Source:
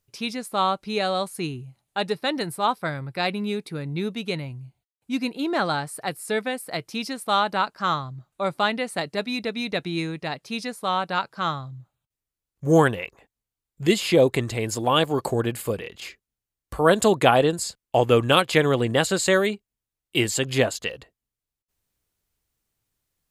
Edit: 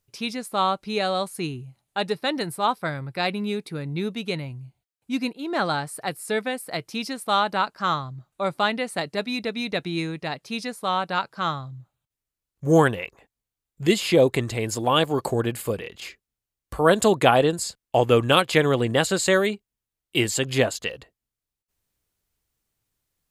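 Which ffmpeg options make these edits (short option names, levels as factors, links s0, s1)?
-filter_complex "[0:a]asplit=2[s0][s1];[s0]atrim=end=5.33,asetpts=PTS-STARTPTS,afade=t=out:st=5.326:d=0.004:c=hsin:silence=0.237137[s2];[s1]atrim=start=5.33,asetpts=PTS-STARTPTS,afade=t=in:d=0.28:silence=0.237137[s3];[s2][s3]concat=n=2:v=0:a=1"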